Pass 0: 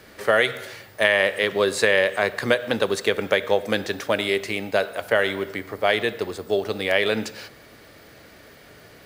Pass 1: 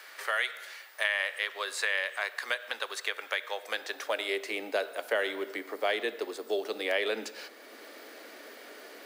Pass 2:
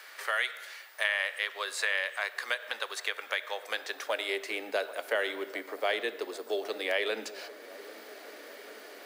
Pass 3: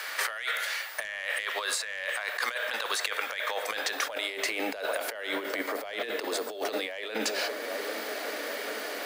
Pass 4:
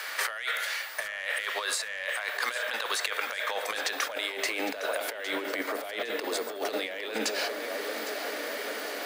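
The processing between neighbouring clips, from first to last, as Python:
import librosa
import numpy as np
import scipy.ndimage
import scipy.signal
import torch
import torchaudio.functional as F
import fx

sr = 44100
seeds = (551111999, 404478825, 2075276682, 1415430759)

y1 = scipy.signal.sosfilt(scipy.signal.butter(8, 230.0, 'highpass', fs=sr, output='sos'), x)
y1 = fx.filter_sweep_highpass(y1, sr, from_hz=1100.0, to_hz=290.0, start_s=3.49, end_s=4.72, q=0.83)
y1 = fx.band_squash(y1, sr, depth_pct=40)
y1 = F.gain(torch.from_numpy(y1), -8.0).numpy()
y2 = fx.low_shelf(y1, sr, hz=250.0, db=-6.0)
y2 = fx.hum_notches(y2, sr, base_hz=50, count=4)
y2 = fx.echo_wet_lowpass(y2, sr, ms=792, feedback_pct=66, hz=1200.0, wet_db=-16.5)
y3 = fx.fold_sine(y2, sr, drive_db=4, ceiling_db=-11.5)
y3 = fx.over_compress(y3, sr, threshold_db=-32.0, ratio=-1.0)
y3 = fx.peak_eq(y3, sr, hz=380.0, db=-6.5, octaves=0.3)
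y4 = fx.echo_feedback(y3, sr, ms=809, feedback_pct=37, wet_db=-13)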